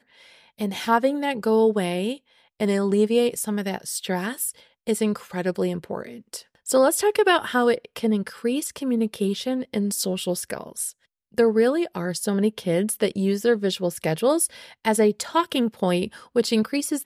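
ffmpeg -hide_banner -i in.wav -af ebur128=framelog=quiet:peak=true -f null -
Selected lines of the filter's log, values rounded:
Integrated loudness:
  I:         -23.5 LUFS
  Threshold: -33.8 LUFS
Loudness range:
  LRA:         3.2 LU
  Threshold: -43.8 LUFS
  LRA low:   -25.9 LUFS
  LRA high:  -22.7 LUFS
True peak:
  Peak:       -6.4 dBFS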